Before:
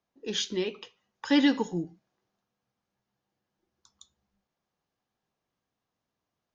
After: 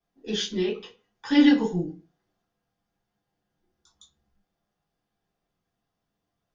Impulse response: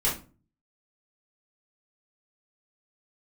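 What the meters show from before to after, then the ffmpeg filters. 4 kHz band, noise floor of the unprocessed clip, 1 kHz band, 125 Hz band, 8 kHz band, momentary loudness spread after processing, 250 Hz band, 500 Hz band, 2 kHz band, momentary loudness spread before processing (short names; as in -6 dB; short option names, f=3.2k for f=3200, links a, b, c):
+1.0 dB, under -85 dBFS, +0.5 dB, +6.0 dB, n/a, 15 LU, +5.5 dB, +3.0 dB, +2.0 dB, 19 LU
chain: -filter_complex "[1:a]atrim=start_sample=2205,asetrate=70560,aresample=44100[a];[0:a][a]afir=irnorm=-1:irlink=0,volume=-4.5dB"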